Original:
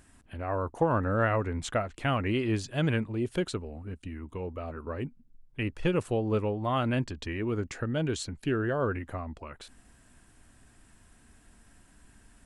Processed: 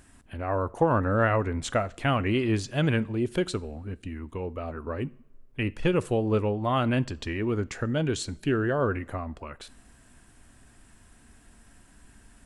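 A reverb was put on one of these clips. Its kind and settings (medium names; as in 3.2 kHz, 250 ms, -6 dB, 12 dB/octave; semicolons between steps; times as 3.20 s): two-slope reverb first 0.49 s, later 2.2 s, from -20 dB, DRR 19 dB; trim +3 dB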